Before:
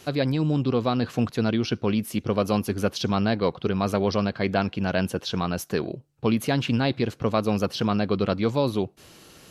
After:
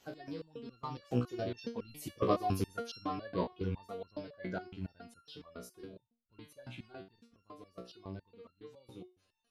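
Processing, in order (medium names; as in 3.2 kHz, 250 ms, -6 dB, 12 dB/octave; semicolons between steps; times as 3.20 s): coarse spectral quantiser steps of 30 dB; Doppler pass-by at 2.31 s, 17 m/s, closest 13 m; resonator arpeggio 7.2 Hz 61–1400 Hz; trim +3 dB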